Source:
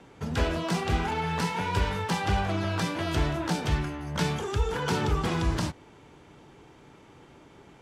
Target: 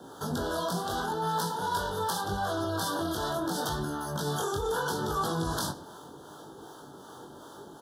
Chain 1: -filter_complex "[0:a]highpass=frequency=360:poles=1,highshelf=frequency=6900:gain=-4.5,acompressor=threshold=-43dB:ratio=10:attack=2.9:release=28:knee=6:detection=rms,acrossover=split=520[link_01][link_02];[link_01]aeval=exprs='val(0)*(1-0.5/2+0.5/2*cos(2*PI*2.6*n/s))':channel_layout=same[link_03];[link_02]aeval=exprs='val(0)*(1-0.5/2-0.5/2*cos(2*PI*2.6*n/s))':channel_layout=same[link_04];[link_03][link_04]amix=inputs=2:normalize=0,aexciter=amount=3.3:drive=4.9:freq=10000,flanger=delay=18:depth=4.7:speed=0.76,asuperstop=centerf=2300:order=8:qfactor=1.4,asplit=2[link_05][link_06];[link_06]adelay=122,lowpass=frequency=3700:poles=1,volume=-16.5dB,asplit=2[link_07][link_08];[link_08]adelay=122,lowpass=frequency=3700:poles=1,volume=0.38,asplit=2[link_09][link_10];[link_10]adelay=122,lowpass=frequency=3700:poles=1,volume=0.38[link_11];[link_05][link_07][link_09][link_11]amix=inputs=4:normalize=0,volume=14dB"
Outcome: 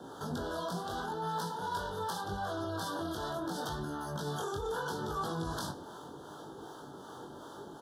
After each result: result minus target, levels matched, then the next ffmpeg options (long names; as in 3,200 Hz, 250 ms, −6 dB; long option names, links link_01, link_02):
downward compressor: peak gain reduction +5.5 dB; 8,000 Hz band −2.5 dB
-filter_complex "[0:a]highpass=frequency=360:poles=1,highshelf=frequency=6900:gain=-4.5,acompressor=threshold=-36.5dB:ratio=10:attack=2.9:release=28:knee=6:detection=rms,acrossover=split=520[link_01][link_02];[link_01]aeval=exprs='val(0)*(1-0.5/2+0.5/2*cos(2*PI*2.6*n/s))':channel_layout=same[link_03];[link_02]aeval=exprs='val(0)*(1-0.5/2-0.5/2*cos(2*PI*2.6*n/s))':channel_layout=same[link_04];[link_03][link_04]amix=inputs=2:normalize=0,aexciter=amount=3.3:drive=4.9:freq=10000,flanger=delay=18:depth=4.7:speed=0.76,asuperstop=centerf=2300:order=8:qfactor=1.4,asplit=2[link_05][link_06];[link_06]adelay=122,lowpass=frequency=3700:poles=1,volume=-16.5dB,asplit=2[link_07][link_08];[link_08]adelay=122,lowpass=frequency=3700:poles=1,volume=0.38,asplit=2[link_09][link_10];[link_10]adelay=122,lowpass=frequency=3700:poles=1,volume=0.38[link_11];[link_05][link_07][link_09][link_11]amix=inputs=4:normalize=0,volume=14dB"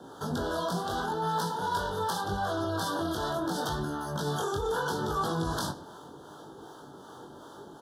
8,000 Hz band −3.5 dB
-filter_complex "[0:a]highpass=frequency=360:poles=1,highshelf=frequency=6900:gain=3,acompressor=threshold=-36.5dB:ratio=10:attack=2.9:release=28:knee=6:detection=rms,acrossover=split=520[link_01][link_02];[link_01]aeval=exprs='val(0)*(1-0.5/2+0.5/2*cos(2*PI*2.6*n/s))':channel_layout=same[link_03];[link_02]aeval=exprs='val(0)*(1-0.5/2-0.5/2*cos(2*PI*2.6*n/s))':channel_layout=same[link_04];[link_03][link_04]amix=inputs=2:normalize=0,aexciter=amount=3.3:drive=4.9:freq=10000,flanger=delay=18:depth=4.7:speed=0.76,asuperstop=centerf=2300:order=8:qfactor=1.4,asplit=2[link_05][link_06];[link_06]adelay=122,lowpass=frequency=3700:poles=1,volume=-16.5dB,asplit=2[link_07][link_08];[link_08]adelay=122,lowpass=frequency=3700:poles=1,volume=0.38,asplit=2[link_09][link_10];[link_10]adelay=122,lowpass=frequency=3700:poles=1,volume=0.38[link_11];[link_05][link_07][link_09][link_11]amix=inputs=4:normalize=0,volume=14dB"